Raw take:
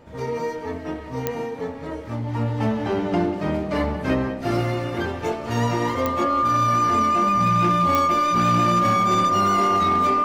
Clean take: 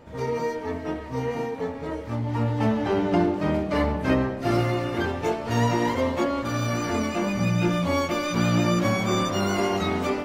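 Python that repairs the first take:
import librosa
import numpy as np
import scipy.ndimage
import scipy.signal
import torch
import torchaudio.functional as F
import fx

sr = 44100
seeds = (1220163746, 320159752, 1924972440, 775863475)

y = fx.fix_declip(x, sr, threshold_db=-13.0)
y = fx.fix_declick_ar(y, sr, threshold=10.0)
y = fx.notch(y, sr, hz=1200.0, q=30.0)
y = fx.fix_echo_inverse(y, sr, delay_ms=188, level_db=-15.0)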